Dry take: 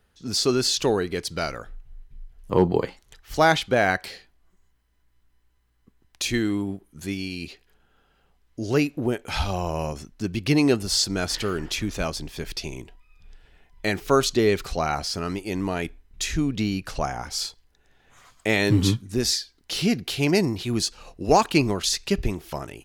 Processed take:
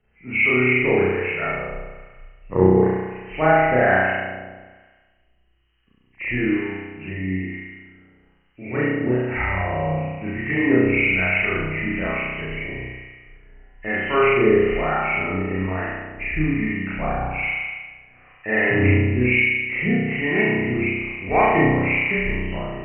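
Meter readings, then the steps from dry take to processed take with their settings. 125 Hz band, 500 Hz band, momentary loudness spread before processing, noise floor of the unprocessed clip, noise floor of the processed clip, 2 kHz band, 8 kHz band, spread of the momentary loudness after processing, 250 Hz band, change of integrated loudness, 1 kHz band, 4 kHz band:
+3.5 dB, +4.0 dB, 13 LU, -65 dBFS, -61 dBFS, +10.0 dB, under -40 dB, 15 LU, +3.0 dB, +4.0 dB, +3.5 dB, -10.5 dB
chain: knee-point frequency compression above 1.7 kHz 4:1; spring tank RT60 1.4 s, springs 32 ms, chirp 55 ms, DRR -8.5 dB; harmonic tremolo 1.1 Hz, depth 50%, crossover 790 Hz; trim -4 dB

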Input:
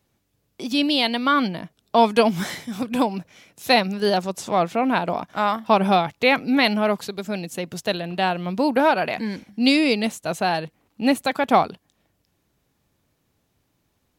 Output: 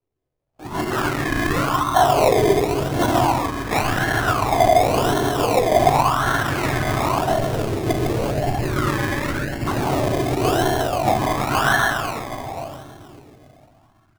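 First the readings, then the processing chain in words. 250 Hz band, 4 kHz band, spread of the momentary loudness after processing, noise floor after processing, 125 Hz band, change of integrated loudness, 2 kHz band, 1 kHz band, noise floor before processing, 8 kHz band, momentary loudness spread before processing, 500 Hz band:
-1.5 dB, -2.5 dB, 9 LU, -59 dBFS, +10.5 dB, +1.5 dB, +2.5 dB, +3.5 dB, -71 dBFS, +8.5 dB, 11 LU, +3.0 dB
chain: whisper effect; ten-band graphic EQ 125 Hz +9 dB, 250 Hz -9 dB, 500 Hz -10 dB, 2 kHz -4 dB, 4 kHz -6 dB; two-band feedback delay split 1.4 kHz, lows 134 ms, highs 215 ms, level -3 dB; spectral noise reduction 14 dB; spectral selection erased 7.97–9.61 s, 620–1500 Hz; gain riding within 4 dB 0.5 s; comb 2.9 ms, depth 68%; simulated room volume 120 m³, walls hard, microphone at 0.56 m; decimation with a swept rate 25×, swing 60% 0.91 Hz; sweeping bell 0.38 Hz 400–1700 Hz +12 dB; trim -4.5 dB

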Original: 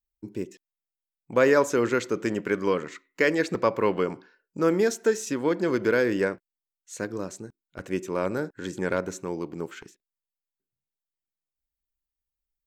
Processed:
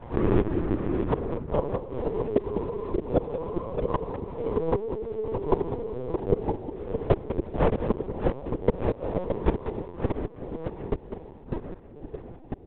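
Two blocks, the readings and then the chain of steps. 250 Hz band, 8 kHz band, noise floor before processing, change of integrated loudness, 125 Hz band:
-0.5 dB, under -40 dB, under -85 dBFS, -3.0 dB, +7.5 dB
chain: every event in the spectrogram widened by 480 ms; Chebyshev low-pass 1.1 kHz, order 10; level rider gain up to 10 dB; crossover distortion -31.5 dBFS; trance gate "xxx.xxx.x..." 76 bpm -24 dB; inverted gate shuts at -15 dBFS, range -31 dB; ever faster or slower copies 291 ms, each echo -2 st, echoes 3, each echo -6 dB; multi-tap echo 197/623 ms -10.5/-7 dB; LPC vocoder at 8 kHz pitch kept; trim +8.5 dB

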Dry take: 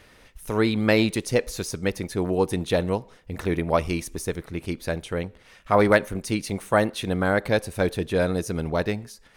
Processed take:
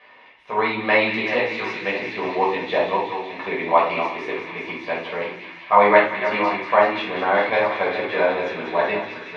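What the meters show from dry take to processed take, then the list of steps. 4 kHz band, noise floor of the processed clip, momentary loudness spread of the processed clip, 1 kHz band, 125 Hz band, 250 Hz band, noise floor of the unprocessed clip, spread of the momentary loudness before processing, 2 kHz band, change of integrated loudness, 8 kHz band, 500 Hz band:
+2.0 dB, -48 dBFS, 11 LU, +10.0 dB, -12.5 dB, -4.0 dB, -54 dBFS, 11 LU, +7.0 dB, +4.0 dB, under -15 dB, +3.0 dB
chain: chunks repeated in reverse 554 ms, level -9 dB; cabinet simulation 480–3300 Hz, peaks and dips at 530 Hz -4 dB, 950 Hz +7 dB, 1.5 kHz -5 dB, 2.1 kHz +5 dB; on a send: feedback echo behind a high-pass 187 ms, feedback 82%, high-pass 2 kHz, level -8 dB; on the sum: simulated room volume 470 m³, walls furnished, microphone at 5.7 m; trim -2.5 dB

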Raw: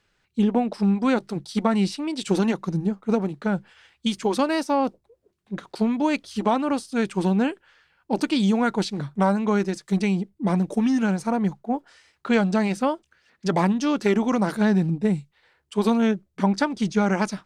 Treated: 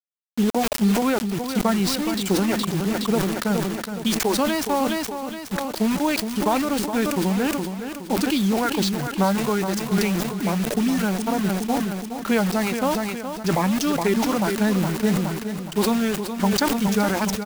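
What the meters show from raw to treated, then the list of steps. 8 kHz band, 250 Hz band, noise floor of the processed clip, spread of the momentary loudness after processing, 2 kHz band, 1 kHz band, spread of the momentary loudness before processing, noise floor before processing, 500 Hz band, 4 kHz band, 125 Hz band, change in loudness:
+11.0 dB, +0.5 dB, -34 dBFS, 6 LU, +3.0 dB, +1.5 dB, 8 LU, -71 dBFS, +1.0 dB, +6.5 dB, +0.5 dB, +1.0 dB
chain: reverb removal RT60 1.5 s; in parallel at +1 dB: compression 6:1, threshold -28 dBFS, peak gain reduction 12 dB; on the sum: added noise pink -45 dBFS; bit crusher 5-bit; on a send: feedback delay 418 ms, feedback 43%, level -9 dB; on the sum: decay stretcher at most 34 dB/s; trim -3 dB

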